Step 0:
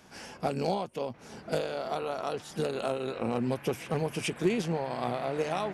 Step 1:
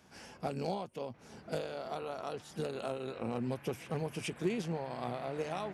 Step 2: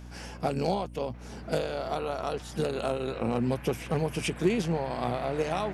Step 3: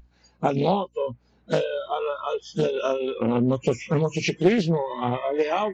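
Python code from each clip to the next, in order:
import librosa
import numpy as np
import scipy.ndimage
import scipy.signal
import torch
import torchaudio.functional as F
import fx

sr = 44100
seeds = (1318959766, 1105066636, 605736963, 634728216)

y1 = scipy.signal.sosfilt(scipy.signal.butter(2, 53.0, 'highpass', fs=sr, output='sos'), x)
y1 = fx.low_shelf(y1, sr, hz=100.0, db=7.0)
y1 = F.gain(torch.from_numpy(y1), -7.0).numpy()
y2 = fx.add_hum(y1, sr, base_hz=60, snr_db=14)
y2 = F.gain(torch.from_numpy(y2), 8.0).numpy()
y3 = fx.freq_compress(y2, sr, knee_hz=2600.0, ratio=1.5)
y3 = fx.noise_reduce_blind(y3, sr, reduce_db=27)
y3 = fx.doppler_dist(y3, sr, depth_ms=0.37)
y3 = F.gain(torch.from_numpy(y3), 7.0).numpy()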